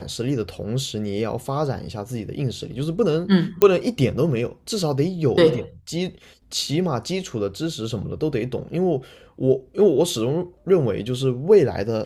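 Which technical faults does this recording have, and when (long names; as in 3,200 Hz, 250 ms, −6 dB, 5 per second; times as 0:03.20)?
0:03.62: click −4 dBFS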